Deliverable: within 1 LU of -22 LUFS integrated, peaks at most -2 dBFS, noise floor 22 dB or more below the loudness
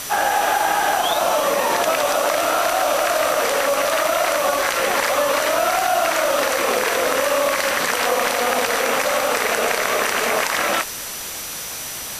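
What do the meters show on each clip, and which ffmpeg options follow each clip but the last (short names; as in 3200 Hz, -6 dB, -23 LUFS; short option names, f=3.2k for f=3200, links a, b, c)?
steady tone 5900 Hz; tone level -36 dBFS; noise floor -30 dBFS; noise floor target -41 dBFS; loudness -19.0 LUFS; peak -5.5 dBFS; loudness target -22.0 LUFS
-> -af "bandreject=f=5.9k:w=30"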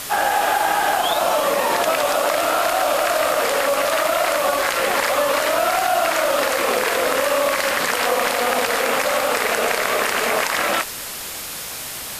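steady tone none; noise floor -31 dBFS; noise floor target -41 dBFS
-> -af "afftdn=nr=10:nf=-31"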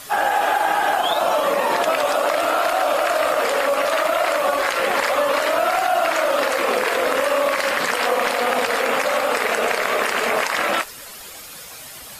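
noise floor -38 dBFS; noise floor target -42 dBFS
-> -af "afftdn=nr=6:nf=-38"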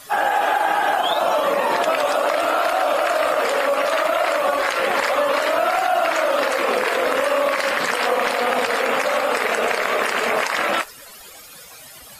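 noise floor -42 dBFS; loudness -19.5 LUFS; peak -6.0 dBFS; loudness target -22.0 LUFS
-> -af "volume=-2.5dB"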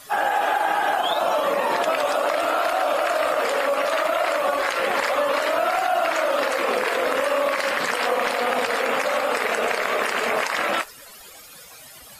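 loudness -22.0 LUFS; peak -8.5 dBFS; noise floor -44 dBFS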